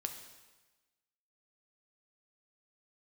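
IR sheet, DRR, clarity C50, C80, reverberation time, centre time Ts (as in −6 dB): 5.0 dB, 8.0 dB, 10.0 dB, 1.2 s, 22 ms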